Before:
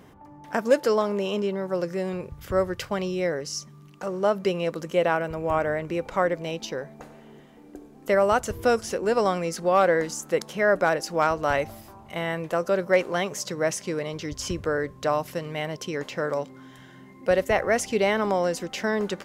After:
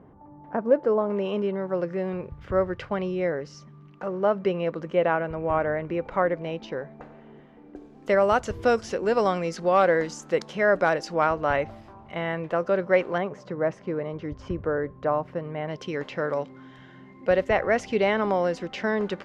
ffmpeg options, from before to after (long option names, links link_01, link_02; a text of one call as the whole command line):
ffmpeg -i in.wav -af "asetnsamples=nb_out_samples=441:pad=0,asendcmd='1.1 lowpass f 2300;7.76 lowpass f 4800;11.14 lowpass f 2800;13.18 lowpass f 1400;15.68 lowpass f 3400',lowpass=1000" out.wav